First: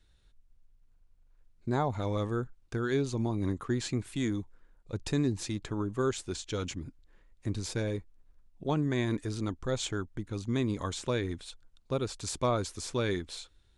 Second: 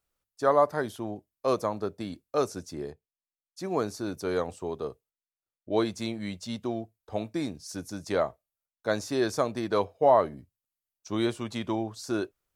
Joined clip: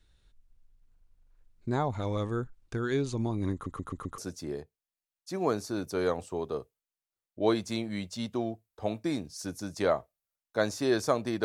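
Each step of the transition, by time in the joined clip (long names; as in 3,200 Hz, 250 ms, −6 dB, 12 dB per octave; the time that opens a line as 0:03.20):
first
0:03.53: stutter in place 0.13 s, 5 plays
0:04.18: continue with second from 0:02.48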